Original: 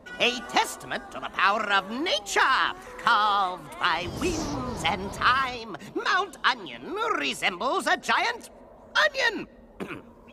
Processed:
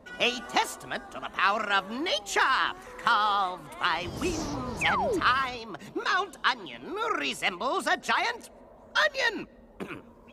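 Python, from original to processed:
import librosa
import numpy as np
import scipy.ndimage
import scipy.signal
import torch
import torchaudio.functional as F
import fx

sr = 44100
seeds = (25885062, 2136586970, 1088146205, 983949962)

y = fx.spec_paint(x, sr, seeds[0], shape='fall', start_s=4.81, length_s=0.39, low_hz=280.0, high_hz=2700.0, level_db=-25.0)
y = y * librosa.db_to_amplitude(-2.5)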